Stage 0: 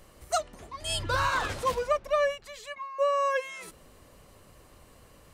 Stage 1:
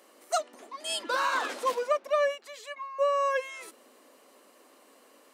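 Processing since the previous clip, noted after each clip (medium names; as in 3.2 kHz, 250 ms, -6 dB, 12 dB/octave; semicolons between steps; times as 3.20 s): elliptic high-pass 250 Hz, stop band 60 dB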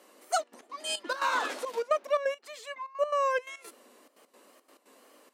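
wow and flutter 66 cents; trance gate "xxxxx.x.xxx.x." 173 bpm -12 dB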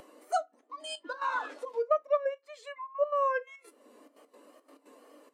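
upward compressor, threshold -29 dBFS; FDN reverb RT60 0.33 s, low-frequency decay 1.3×, high-frequency decay 0.7×, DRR 10 dB; spectral contrast expander 1.5:1; trim -1 dB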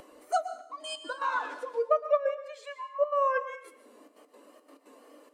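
plate-style reverb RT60 0.69 s, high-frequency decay 1×, pre-delay 105 ms, DRR 11 dB; trim +1.5 dB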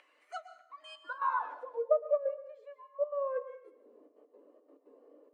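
band-pass sweep 2.2 kHz -> 420 Hz, 0.56–2.24 s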